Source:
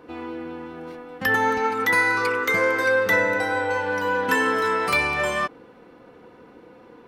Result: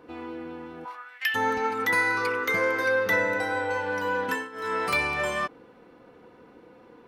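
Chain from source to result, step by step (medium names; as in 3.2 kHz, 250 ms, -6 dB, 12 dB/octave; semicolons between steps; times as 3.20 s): 0.84–1.34 s: resonant high-pass 850 Hz -> 2.9 kHz, resonance Q 4.9; 2.09–3.20 s: band-stop 7.8 kHz, Q 5.8; 4.23–4.78 s: dip -18 dB, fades 0.26 s; trim -4 dB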